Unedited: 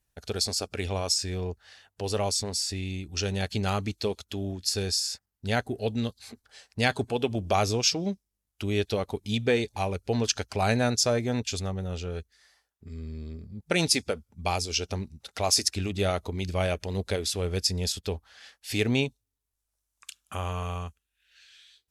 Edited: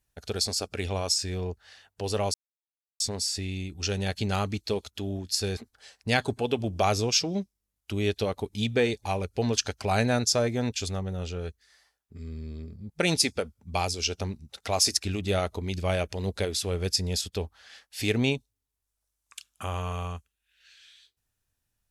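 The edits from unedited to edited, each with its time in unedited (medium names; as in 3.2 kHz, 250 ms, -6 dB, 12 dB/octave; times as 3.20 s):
2.34 s: insert silence 0.66 s
4.91–6.28 s: delete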